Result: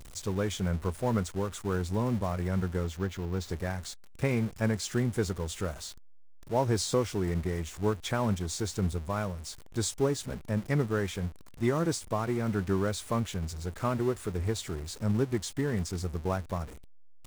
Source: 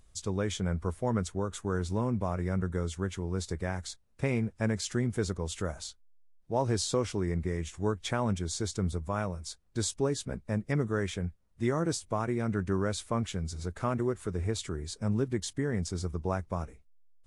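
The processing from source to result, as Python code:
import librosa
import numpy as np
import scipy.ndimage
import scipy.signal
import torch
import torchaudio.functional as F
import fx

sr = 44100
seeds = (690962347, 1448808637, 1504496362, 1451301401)

y = x + 0.5 * 10.0 ** (-36.5 / 20.0) * np.sign(x)
y = fx.peak_eq(y, sr, hz=9100.0, db=-8.5, octaves=0.71, at=(2.84, 3.5))
y = fx.upward_expand(y, sr, threshold_db=-38.0, expansion=1.5)
y = y * 10.0 ** (1.5 / 20.0)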